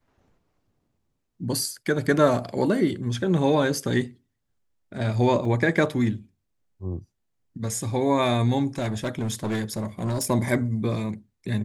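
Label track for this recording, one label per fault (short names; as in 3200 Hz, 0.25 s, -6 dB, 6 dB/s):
5.450000	5.450000	gap 2.6 ms
8.780000	10.310000	clipped -22.5 dBFS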